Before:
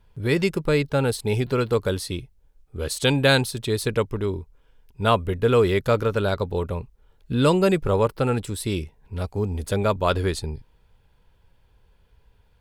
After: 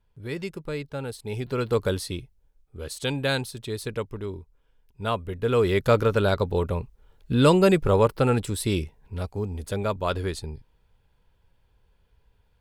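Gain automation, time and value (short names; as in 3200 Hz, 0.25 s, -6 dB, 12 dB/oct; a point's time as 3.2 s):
1.18 s -11 dB
1.82 s -0.5 dB
2.81 s -7.5 dB
5.29 s -7.5 dB
5.9 s +1 dB
8.8 s +1 dB
9.5 s -5 dB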